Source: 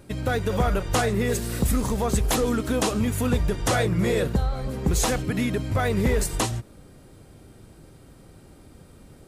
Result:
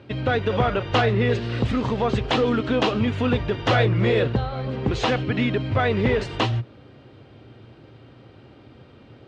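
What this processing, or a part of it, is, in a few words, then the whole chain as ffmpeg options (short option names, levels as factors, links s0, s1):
guitar cabinet: -filter_complex "[0:a]asettb=1/sr,asplit=3[s0][s1][s2];[s0]atrim=end=0.984[s3];[s1]atrim=start=0.98:end=1.58,asetpts=PTS-STARTPTS,afade=t=in:d=0.004:c=qsin,afade=t=out:st=0.596:d=0.004:c=qsin,lowpass=7100[s4];[s2]atrim=start=1.576[s5];[s3][s4]acrossfade=d=0.004:c1=hsin:c2=qsin[s6];[s6][s5]acrossfade=d=0.004:c1=qsin:c2=hsin,highpass=110,equalizer=f=120:t=q:w=4:g=7,equalizer=f=170:t=q:w=4:g=-10,equalizer=f=2900:t=q:w=4:g=5,lowpass=f=4000:w=0.5412,lowpass=f=4000:w=1.3066,volume=1.5"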